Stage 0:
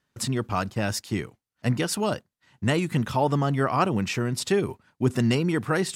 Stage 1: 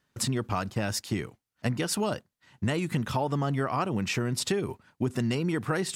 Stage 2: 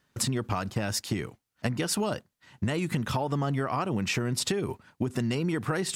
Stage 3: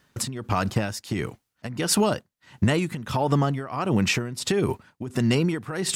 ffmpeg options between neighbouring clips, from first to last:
-af "acompressor=threshold=0.0501:ratio=6,volume=1.19"
-af "acompressor=threshold=0.0398:ratio=6,volume=1.5"
-af "tremolo=f=1.5:d=0.79,volume=2.51"

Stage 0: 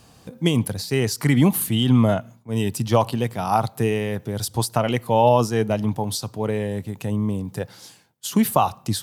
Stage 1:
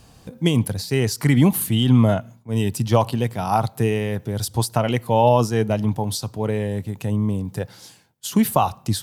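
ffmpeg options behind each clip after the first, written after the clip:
-af "lowshelf=f=63:g=11.5,bandreject=f=1200:w=26"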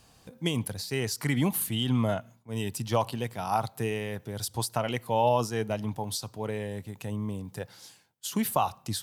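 -af "lowshelf=f=470:g=-7,volume=0.531"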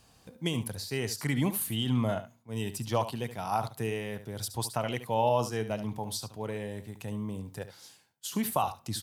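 -af "aecho=1:1:72:0.251,volume=0.75"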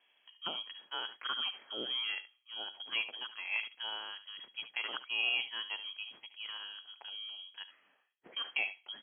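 -filter_complex "[0:a]adynamicsmooth=sensitivity=4.5:basefreq=2500,lowpass=f=2900:t=q:w=0.5098,lowpass=f=2900:t=q:w=0.6013,lowpass=f=2900:t=q:w=0.9,lowpass=f=2900:t=q:w=2.563,afreqshift=-3400,acrossover=split=180 2400:gain=0.0708 1 0.126[s0][s1][s2];[s0][s1][s2]amix=inputs=3:normalize=0"

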